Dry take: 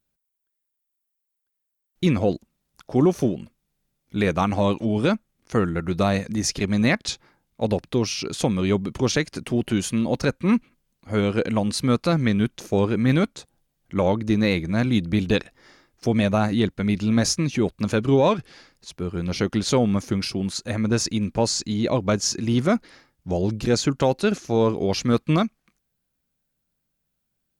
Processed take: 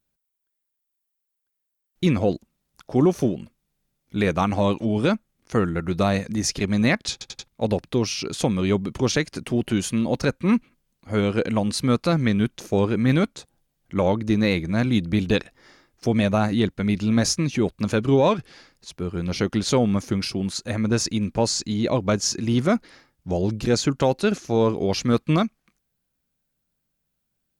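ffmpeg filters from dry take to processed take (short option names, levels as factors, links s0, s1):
-filter_complex "[0:a]asplit=5[s0][s1][s2][s3][s4];[s0]atrim=end=7.212[s5];[s1]atrim=start=7.118:end=7.212[s6];[s2]atrim=start=7.118:end=7.212[s7];[s3]atrim=start=7.118:end=7.212[s8];[s4]atrim=start=7.478[s9];[s5][s6]acrossfade=d=0.004:c1=hsin:c2=hsin[s10];[s10][s7]acrossfade=d=0.004:c1=hsin:c2=hsin[s11];[s11][s8]acrossfade=d=0.004:c1=hsin:c2=hsin[s12];[s12][s9]acrossfade=d=0.004:c1=hsin:c2=hsin"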